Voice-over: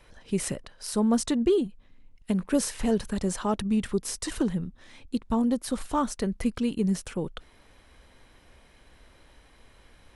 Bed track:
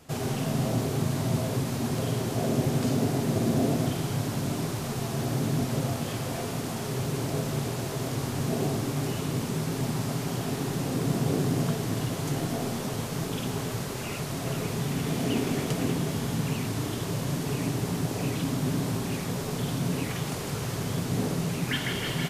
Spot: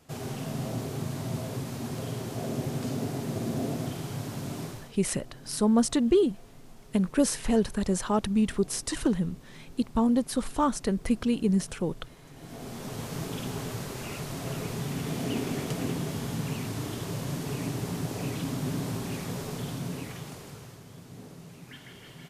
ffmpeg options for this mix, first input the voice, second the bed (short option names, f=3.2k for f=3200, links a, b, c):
-filter_complex "[0:a]adelay=4650,volume=1dB[a];[1:a]volume=12.5dB,afade=t=out:st=4.63:d=0.3:silence=0.158489,afade=t=in:st=12.33:d=0.79:silence=0.11885,afade=t=out:st=19.37:d=1.45:silence=0.188365[b];[a][b]amix=inputs=2:normalize=0"